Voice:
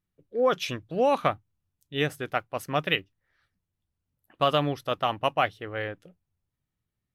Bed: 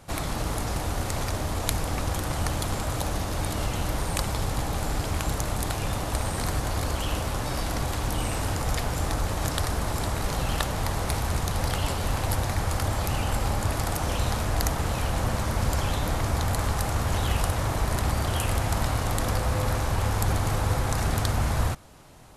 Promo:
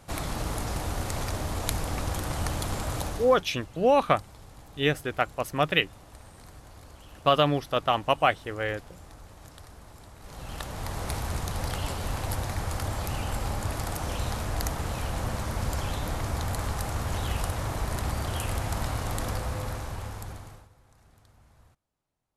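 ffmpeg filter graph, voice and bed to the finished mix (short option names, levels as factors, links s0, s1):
-filter_complex "[0:a]adelay=2850,volume=1.26[s0];[1:a]volume=5.01,afade=t=out:st=2.99:d=0.44:silence=0.11885,afade=t=in:st=10.19:d=0.91:silence=0.149624,afade=t=out:st=19.22:d=1.47:silence=0.0334965[s1];[s0][s1]amix=inputs=2:normalize=0"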